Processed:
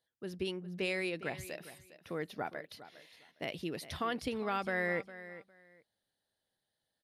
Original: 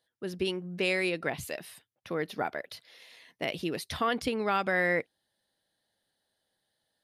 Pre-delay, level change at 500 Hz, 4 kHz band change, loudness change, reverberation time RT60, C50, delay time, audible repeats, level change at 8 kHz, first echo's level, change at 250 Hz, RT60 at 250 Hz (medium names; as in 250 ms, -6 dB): no reverb, -6.5 dB, -7.0 dB, -6.5 dB, no reverb, no reverb, 407 ms, 2, -7.0 dB, -15.0 dB, -5.5 dB, no reverb